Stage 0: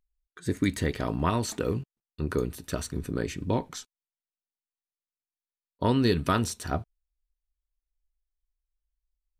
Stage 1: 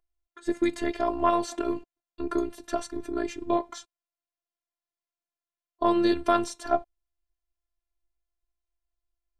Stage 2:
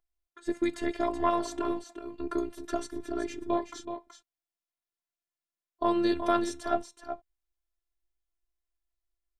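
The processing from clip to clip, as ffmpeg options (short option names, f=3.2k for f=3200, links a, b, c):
-af "lowpass=8.9k,afftfilt=real='hypot(re,im)*cos(PI*b)':imag='0':win_size=512:overlap=0.75,equalizer=f=730:t=o:w=1.8:g=11"
-af "aecho=1:1:375:0.355,volume=-3.5dB"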